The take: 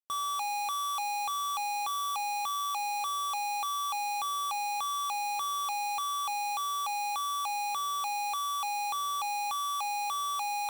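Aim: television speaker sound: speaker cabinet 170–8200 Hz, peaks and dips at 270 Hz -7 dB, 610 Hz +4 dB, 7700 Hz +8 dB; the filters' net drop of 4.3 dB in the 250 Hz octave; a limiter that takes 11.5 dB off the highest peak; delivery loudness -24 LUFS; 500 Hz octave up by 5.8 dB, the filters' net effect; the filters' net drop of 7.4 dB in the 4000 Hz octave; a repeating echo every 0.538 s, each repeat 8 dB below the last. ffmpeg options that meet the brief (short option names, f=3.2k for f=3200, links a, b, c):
-af "equalizer=f=250:t=o:g=-7,equalizer=f=500:t=o:g=6.5,equalizer=f=4k:t=o:g=-9,alimiter=level_in=17dB:limit=-24dB:level=0:latency=1,volume=-17dB,highpass=f=170:w=0.5412,highpass=f=170:w=1.3066,equalizer=f=270:t=q:w=4:g=-7,equalizer=f=610:t=q:w=4:g=4,equalizer=f=7.7k:t=q:w=4:g=8,lowpass=f=8.2k:w=0.5412,lowpass=f=8.2k:w=1.3066,aecho=1:1:538|1076|1614|2152|2690:0.398|0.159|0.0637|0.0255|0.0102,volume=18.5dB"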